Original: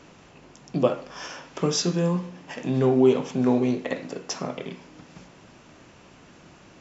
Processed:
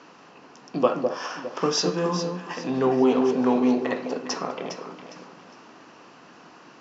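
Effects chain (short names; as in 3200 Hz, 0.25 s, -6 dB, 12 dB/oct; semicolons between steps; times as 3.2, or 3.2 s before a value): speaker cabinet 310–5500 Hz, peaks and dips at 370 Hz -4 dB, 590 Hz -6 dB, 1100 Hz +3 dB, 2200 Hz -6 dB, 3500 Hz -7 dB; on a send: echo with dull and thin repeats by turns 0.204 s, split 810 Hz, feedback 56%, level -4 dB; on the sum: gain +4.5 dB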